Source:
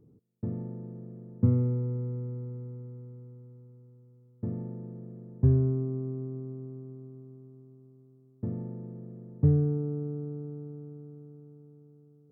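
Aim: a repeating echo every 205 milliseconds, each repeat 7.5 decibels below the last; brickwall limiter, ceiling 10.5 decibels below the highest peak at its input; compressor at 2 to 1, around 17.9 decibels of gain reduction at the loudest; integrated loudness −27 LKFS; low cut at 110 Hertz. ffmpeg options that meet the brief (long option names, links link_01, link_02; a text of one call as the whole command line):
ffmpeg -i in.wav -af "highpass=110,acompressor=threshold=-54dB:ratio=2,alimiter=level_in=18dB:limit=-24dB:level=0:latency=1,volume=-18dB,aecho=1:1:205|410|615|820|1025:0.422|0.177|0.0744|0.0312|0.0131,volume=24.5dB" out.wav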